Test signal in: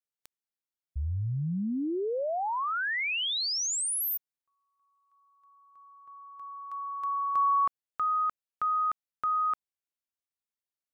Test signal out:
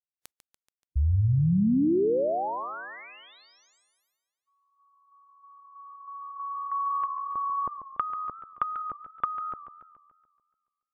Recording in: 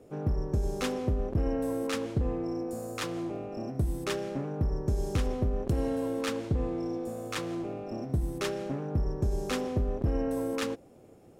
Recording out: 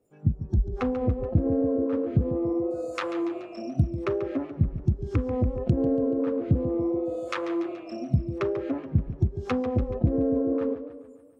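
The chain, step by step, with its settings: spectral noise reduction 25 dB; low-pass that closes with the level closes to 550 Hz, closed at -29.5 dBFS; modulated delay 143 ms, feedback 54%, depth 126 cents, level -12 dB; trim +8 dB

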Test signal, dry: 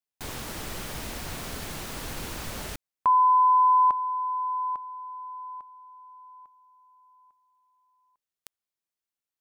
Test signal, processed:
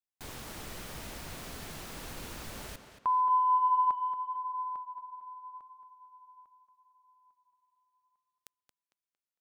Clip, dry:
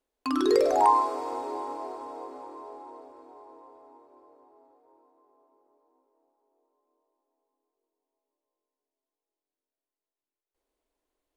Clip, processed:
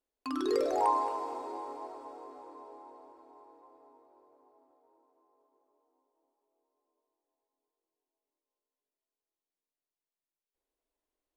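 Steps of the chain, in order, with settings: tape echo 226 ms, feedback 37%, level -8.5 dB, low-pass 5 kHz; trim -7.5 dB

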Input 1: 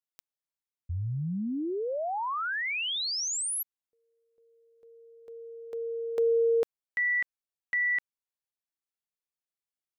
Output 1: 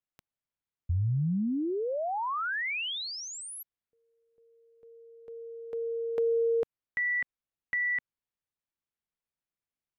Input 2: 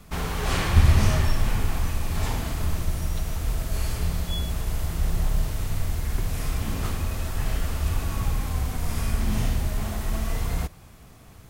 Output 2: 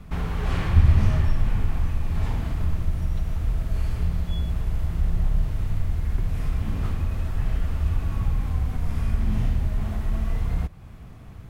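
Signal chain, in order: tone controls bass +7 dB, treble -11 dB; in parallel at +3 dB: compression, threshold -30 dBFS; on the sum: trim -7 dB

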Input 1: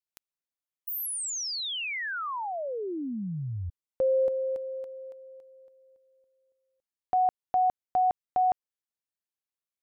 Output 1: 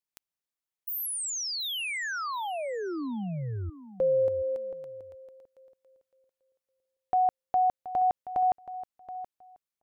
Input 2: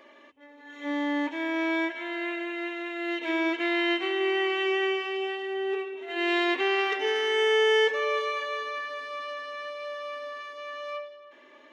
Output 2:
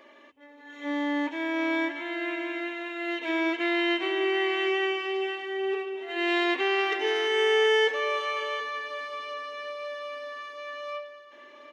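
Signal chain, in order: feedback delay 726 ms, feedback 16%, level -14 dB

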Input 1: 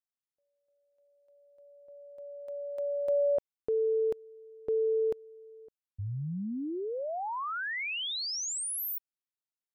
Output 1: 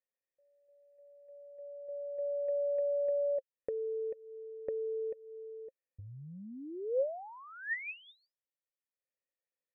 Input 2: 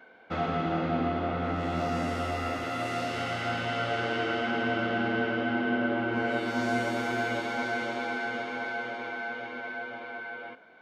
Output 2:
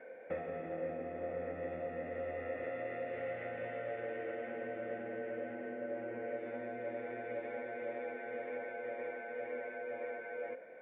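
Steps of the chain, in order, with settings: compression 12:1, threshold -40 dBFS; cascade formant filter e; trim +14.5 dB

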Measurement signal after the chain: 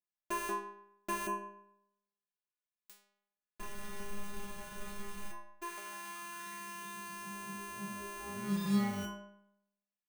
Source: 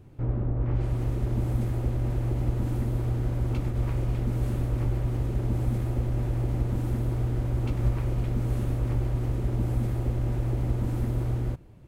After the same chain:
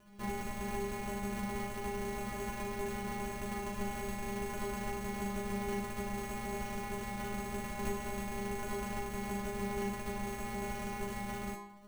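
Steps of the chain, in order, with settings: sorted samples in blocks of 128 samples; inharmonic resonator 200 Hz, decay 0.82 s, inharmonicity 0.002; de-hum 86.05 Hz, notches 12; trim +12.5 dB

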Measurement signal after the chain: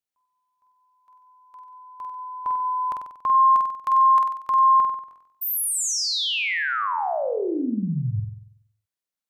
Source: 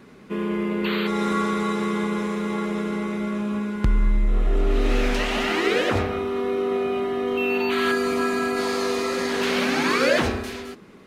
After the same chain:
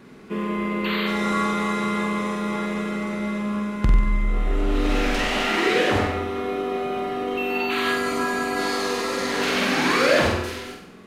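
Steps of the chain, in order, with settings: flutter echo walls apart 8.1 m, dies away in 0.7 s

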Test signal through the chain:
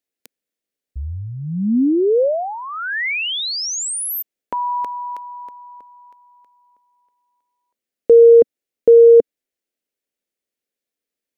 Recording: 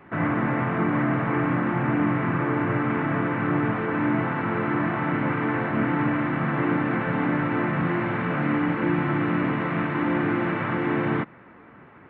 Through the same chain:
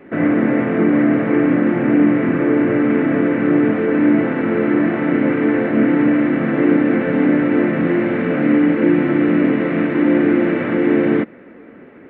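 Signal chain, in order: graphic EQ 125/250/500/1000/2000 Hz -7/+9/+10/-9/+4 dB; trim +2.5 dB

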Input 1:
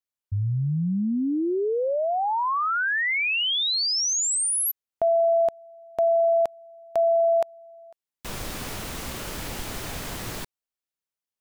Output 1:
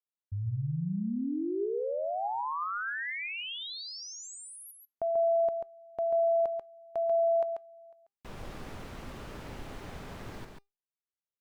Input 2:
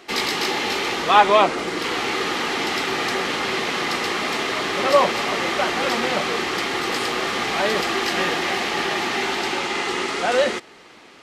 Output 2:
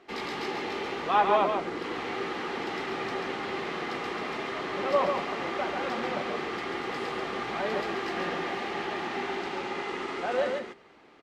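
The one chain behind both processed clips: low-pass 1.5 kHz 6 dB/octave; feedback comb 400 Hz, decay 0.22 s, harmonics all, mix 40%; delay 139 ms -5 dB; trim -4.5 dB

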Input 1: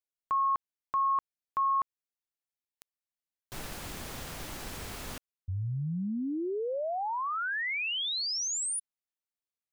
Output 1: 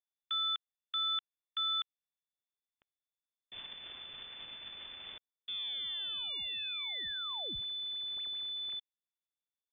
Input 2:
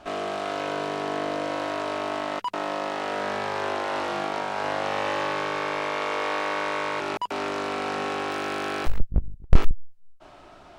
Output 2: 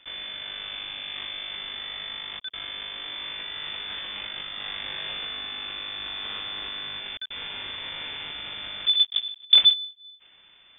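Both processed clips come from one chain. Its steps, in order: block-companded coder 3-bit; full-wave rectifier; frequency inversion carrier 3.5 kHz; trim -8 dB

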